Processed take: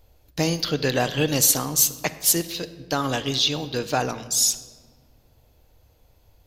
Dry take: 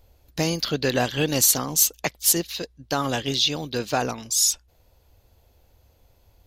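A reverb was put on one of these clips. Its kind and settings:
rectangular room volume 1,700 cubic metres, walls mixed, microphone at 0.49 metres

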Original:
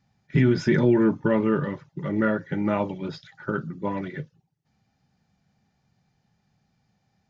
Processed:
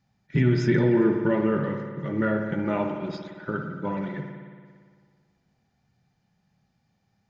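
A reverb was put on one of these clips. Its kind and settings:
spring reverb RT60 1.8 s, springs 56 ms, chirp 70 ms, DRR 4 dB
level −2.5 dB

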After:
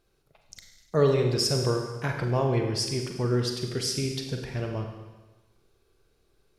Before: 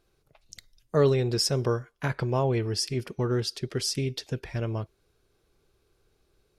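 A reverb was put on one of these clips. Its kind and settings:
four-comb reverb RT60 1.2 s, combs from 33 ms, DRR 3 dB
level −1 dB

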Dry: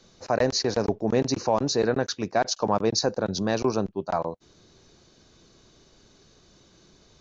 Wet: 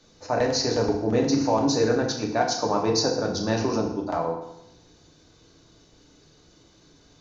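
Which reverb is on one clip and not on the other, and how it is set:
feedback delay network reverb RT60 0.83 s, low-frequency decay 1.2×, high-frequency decay 0.9×, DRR −0.5 dB
level −2.5 dB

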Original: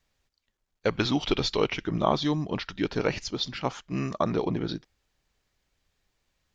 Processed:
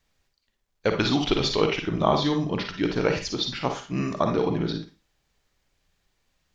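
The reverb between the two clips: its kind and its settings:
four-comb reverb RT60 0.31 s, DRR 4.5 dB
level +2 dB

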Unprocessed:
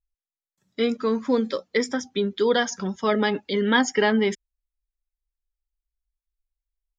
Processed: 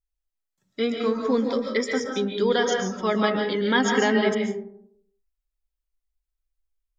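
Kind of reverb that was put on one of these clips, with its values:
comb and all-pass reverb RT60 0.7 s, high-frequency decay 0.35×, pre-delay 100 ms, DRR 1.5 dB
level −2 dB

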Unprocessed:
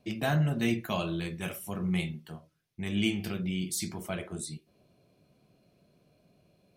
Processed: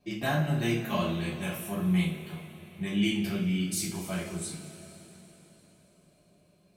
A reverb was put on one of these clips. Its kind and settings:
coupled-rooms reverb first 0.34 s, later 4.1 s, from −18 dB, DRR −5.5 dB
level −5 dB

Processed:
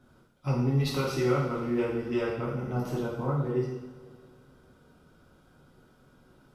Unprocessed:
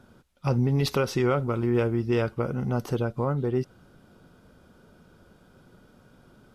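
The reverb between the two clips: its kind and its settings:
coupled-rooms reverb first 0.86 s, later 2.9 s, from −18 dB, DRR −6 dB
level −10 dB

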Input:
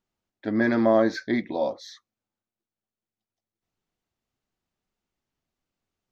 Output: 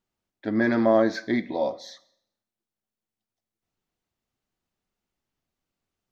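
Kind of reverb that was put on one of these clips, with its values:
four-comb reverb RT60 0.7 s, combs from 33 ms, DRR 17 dB

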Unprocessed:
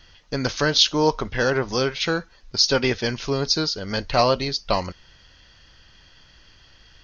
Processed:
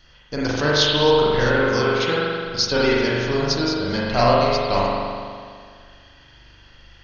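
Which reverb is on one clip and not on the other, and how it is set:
spring reverb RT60 2 s, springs 41 ms, chirp 70 ms, DRR −6 dB
level −3 dB

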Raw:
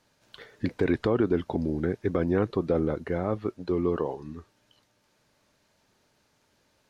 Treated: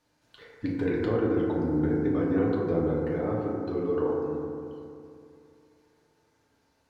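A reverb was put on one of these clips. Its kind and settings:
feedback delay network reverb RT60 2.6 s, high-frequency decay 0.25×, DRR −4.5 dB
level −7.5 dB

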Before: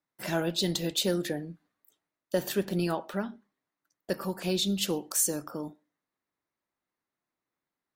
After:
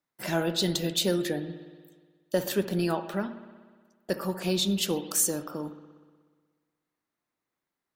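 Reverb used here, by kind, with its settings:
spring reverb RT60 1.6 s, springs 60 ms, chirp 70 ms, DRR 12 dB
level +1.5 dB

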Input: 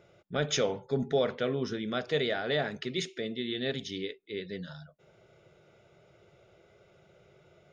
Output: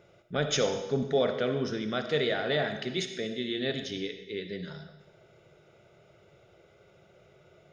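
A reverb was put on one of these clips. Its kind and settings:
comb and all-pass reverb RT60 1 s, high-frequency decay 1×, pre-delay 20 ms, DRR 7.5 dB
level +1 dB

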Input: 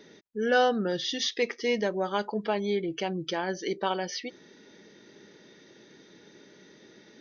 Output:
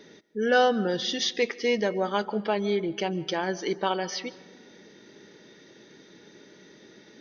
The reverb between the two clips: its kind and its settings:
comb and all-pass reverb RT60 1.4 s, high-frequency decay 0.35×, pre-delay 105 ms, DRR 18 dB
level +2 dB

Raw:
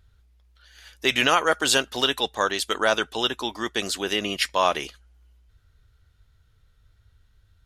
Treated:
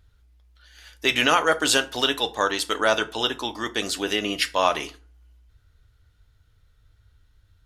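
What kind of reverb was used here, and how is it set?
feedback delay network reverb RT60 0.4 s, low-frequency decay 1×, high-frequency decay 0.65×, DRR 9 dB

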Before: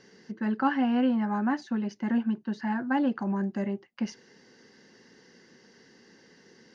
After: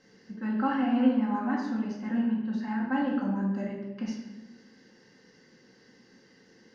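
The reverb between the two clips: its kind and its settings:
rectangular room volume 460 cubic metres, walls mixed, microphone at 2.1 metres
level −7.5 dB

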